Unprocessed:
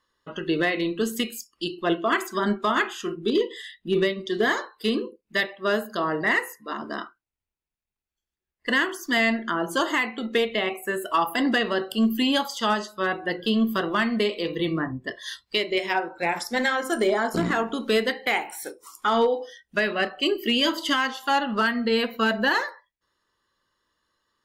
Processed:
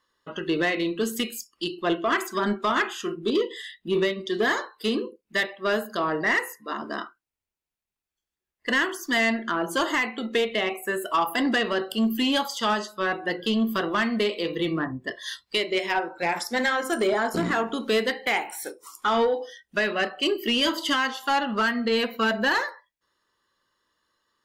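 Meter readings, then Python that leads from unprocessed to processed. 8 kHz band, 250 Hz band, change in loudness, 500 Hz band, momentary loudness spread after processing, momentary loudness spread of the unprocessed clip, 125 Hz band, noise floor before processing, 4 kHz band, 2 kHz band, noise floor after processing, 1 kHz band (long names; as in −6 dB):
+1.0 dB, −1.5 dB, −0.5 dB, −0.5 dB, 8 LU, 9 LU, −2.0 dB, below −85 dBFS, −0.5 dB, −0.5 dB, below −85 dBFS, −0.5 dB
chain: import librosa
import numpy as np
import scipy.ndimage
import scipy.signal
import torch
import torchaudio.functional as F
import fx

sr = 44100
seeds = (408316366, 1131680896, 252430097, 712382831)

p1 = fx.low_shelf(x, sr, hz=130.0, db=-6.5)
p2 = fx.fold_sine(p1, sr, drive_db=5, ceiling_db=-12.5)
p3 = p1 + F.gain(torch.from_numpy(p2), -10.0).numpy()
y = F.gain(torch.from_numpy(p3), -4.5).numpy()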